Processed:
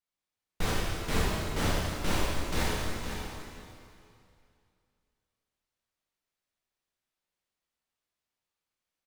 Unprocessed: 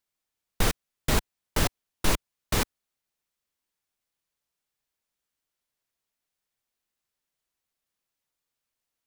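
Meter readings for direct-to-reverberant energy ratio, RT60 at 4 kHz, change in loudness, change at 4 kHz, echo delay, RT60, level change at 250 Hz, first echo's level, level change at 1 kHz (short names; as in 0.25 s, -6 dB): -8.0 dB, 2.5 s, -3.0 dB, -2.5 dB, 0.509 s, 2.6 s, -0.5 dB, -9.0 dB, -0.5 dB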